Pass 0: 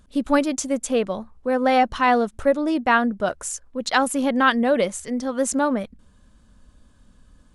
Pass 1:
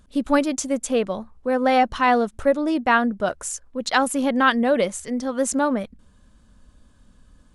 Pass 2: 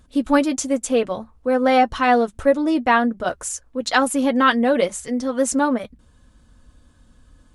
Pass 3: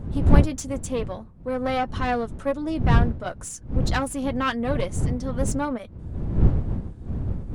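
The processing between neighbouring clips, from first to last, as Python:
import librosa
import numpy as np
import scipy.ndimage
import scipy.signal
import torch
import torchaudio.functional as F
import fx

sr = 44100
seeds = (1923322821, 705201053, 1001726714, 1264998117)

y1 = x
y2 = fx.notch_comb(y1, sr, f0_hz=200.0)
y2 = y2 * librosa.db_to_amplitude(3.0)
y3 = fx.diode_clip(y2, sr, knee_db=-15.5)
y3 = fx.dmg_wind(y3, sr, seeds[0], corner_hz=120.0, level_db=-17.0)
y3 = y3 * librosa.db_to_amplitude(-7.0)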